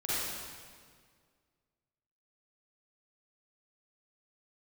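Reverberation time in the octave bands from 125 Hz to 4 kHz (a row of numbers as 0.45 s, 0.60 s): 2.2 s, 2.1 s, 2.0 s, 1.8 s, 1.7 s, 1.6 s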